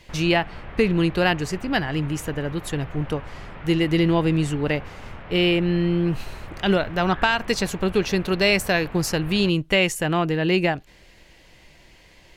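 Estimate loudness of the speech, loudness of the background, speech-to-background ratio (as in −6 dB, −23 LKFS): −22.5 LKFS, −40.0 LKFS, 17.5 dB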